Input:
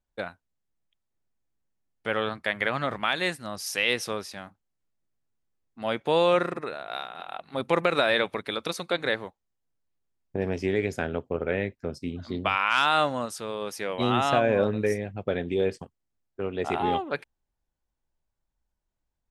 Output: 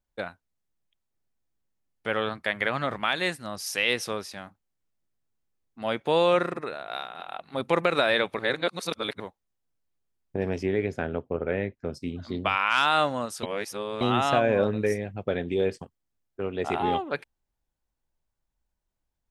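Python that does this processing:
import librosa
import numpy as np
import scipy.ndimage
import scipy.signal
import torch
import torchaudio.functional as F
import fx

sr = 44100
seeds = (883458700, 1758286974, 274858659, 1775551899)

y = fx.lowpass(x, sr, hz=2100.0, slope=6, at=(10.63, 11.85))
y = fx.edit(y, sr, fx.reverse_span(start_s=8.39, length_s=0.81),
    fx.reverse_span(start_s=13.43, length_s=0.58), tone=tone)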